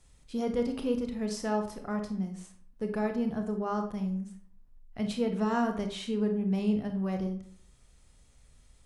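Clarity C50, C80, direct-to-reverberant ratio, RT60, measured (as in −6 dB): 9.0 dB, 12.5 dB, 5.0 dB, 0.55 s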